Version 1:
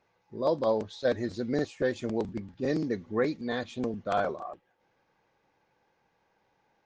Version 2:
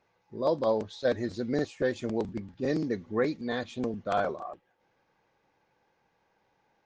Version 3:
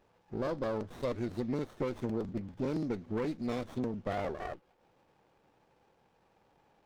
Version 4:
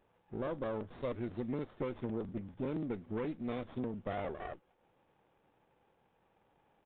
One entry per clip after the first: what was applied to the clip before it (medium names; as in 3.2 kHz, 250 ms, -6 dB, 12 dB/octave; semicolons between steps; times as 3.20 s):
no audible change
peak limiter -20 dBFS, peak gain reduction 5 dB; compression 2.5:1, threshold -39 dBFS, peak gain reduction 9.5 dB; sliding maximum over 17 samples; trim +4.5 dB
resampled via 8 kHz; trim -3.5 dB